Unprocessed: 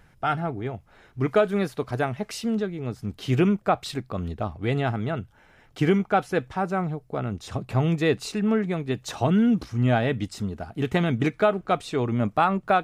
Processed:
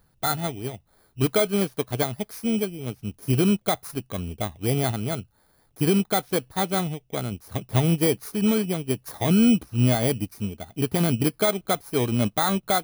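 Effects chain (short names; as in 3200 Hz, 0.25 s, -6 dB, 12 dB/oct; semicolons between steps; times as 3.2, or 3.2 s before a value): FFT order left unsorted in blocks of 16 samples; limiter -15 dBFS, peak gain reduction 5.5 dB; upward expander 1.5:1, over -41 dBFS; gain +4 dB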